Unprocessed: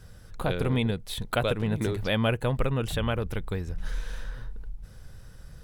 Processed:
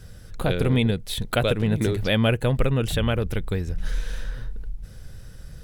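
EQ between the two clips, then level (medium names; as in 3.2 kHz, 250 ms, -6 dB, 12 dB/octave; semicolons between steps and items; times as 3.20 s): peaking EQ 1 kHz -6 dB 0.97 oct; +5.5 dB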